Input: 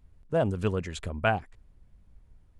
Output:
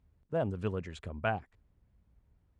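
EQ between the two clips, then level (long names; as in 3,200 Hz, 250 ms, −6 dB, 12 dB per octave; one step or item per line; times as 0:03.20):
high-pass filter 51 Hz
low-pass filter 3,100 Hz 6 dB per octave
−6.0 dB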